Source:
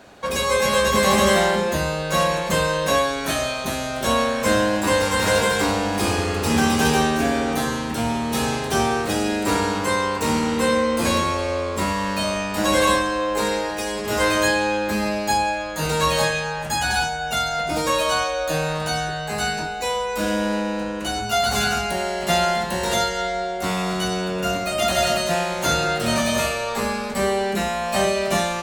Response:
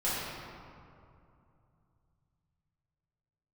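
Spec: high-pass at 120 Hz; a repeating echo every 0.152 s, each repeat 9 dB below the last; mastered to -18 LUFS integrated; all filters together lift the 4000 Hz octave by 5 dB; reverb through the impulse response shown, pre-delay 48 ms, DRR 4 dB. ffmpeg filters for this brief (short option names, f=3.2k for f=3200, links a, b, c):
-filter_complex "[0:a]highpass=120,equalizer=f=4k:t=o:g=6,aecho=1:1:152|304|456|608:0.355|0.124|0.0435|0.0152,asplit=2[a][b];[1:a]atrim=start_sample=2205,adelay=48[c];[b][c]afir=irnorm=-1:irlink=0,volume=-13.5dB[d];[a][d]amix=inputs=2:normalize=0"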